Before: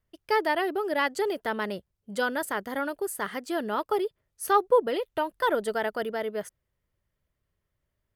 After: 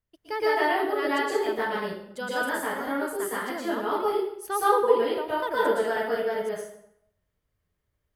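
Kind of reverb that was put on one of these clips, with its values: plate-style reverb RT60 0.72 s, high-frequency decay 0.8×, pre-delay 105 ms, DRR -8.5 dB; trim -7.5 dB

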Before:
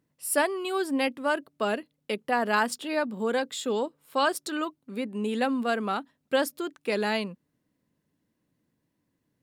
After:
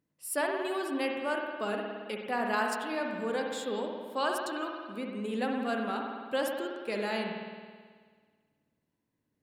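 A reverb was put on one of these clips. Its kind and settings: spring tank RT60 1.7 s, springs 54 ms, chirp 45 ms, DRR 1 dB; trim -7 dB

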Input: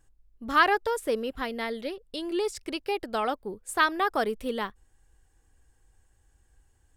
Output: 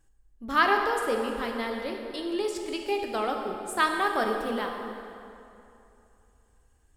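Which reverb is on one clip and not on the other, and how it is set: plate-style reverb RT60 2.8 s, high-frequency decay 0.7×, DRR 2 dB; trim -2 dB

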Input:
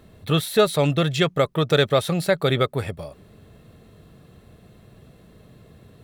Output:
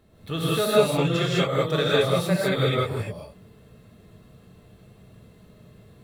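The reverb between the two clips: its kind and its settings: gated-style reverb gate 230 ms rising, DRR -7 dB; trim -9.5 dB

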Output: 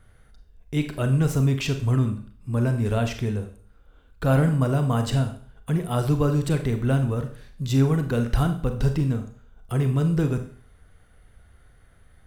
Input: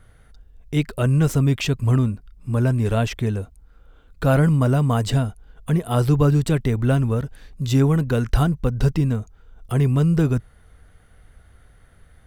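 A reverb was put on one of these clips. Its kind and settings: Schroeder reverb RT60 0.49 s, combs from 30 ms, DRR 6.5 dB; trim -4 dB

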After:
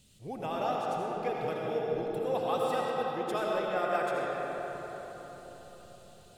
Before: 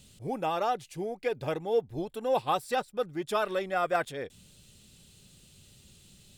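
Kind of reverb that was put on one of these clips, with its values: algorithmic reverb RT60 4.7 s, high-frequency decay 0.5×, pre-delay 40 ms, DRR -3.5 dB; trim -6.5 dB

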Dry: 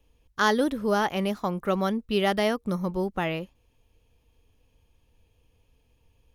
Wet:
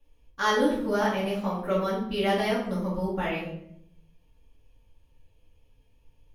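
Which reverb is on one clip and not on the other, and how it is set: simulated room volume 130 m³, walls mixed, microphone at 2.3 m; trim -10 dB

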